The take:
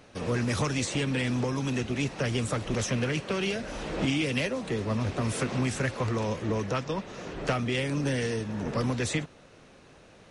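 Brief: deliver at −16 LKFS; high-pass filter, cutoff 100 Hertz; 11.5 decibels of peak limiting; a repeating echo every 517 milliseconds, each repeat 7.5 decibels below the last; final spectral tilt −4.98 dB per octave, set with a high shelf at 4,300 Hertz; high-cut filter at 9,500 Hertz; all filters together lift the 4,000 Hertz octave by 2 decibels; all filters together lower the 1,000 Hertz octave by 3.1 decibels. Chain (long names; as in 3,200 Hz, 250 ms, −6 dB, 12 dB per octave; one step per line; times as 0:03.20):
high-pass filter 100 Hz
low-pass filter 9,500 Hz
parametric band 1,000 Hz −4 dB
parametric band 4,000 Hz +5 dB
high-shelf EQ 4,300 Hz −3.5 dB
brickwall limiter −27 dBFS
repeating echo 517 ms, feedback 42%, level −7.5 dB
level +19 dB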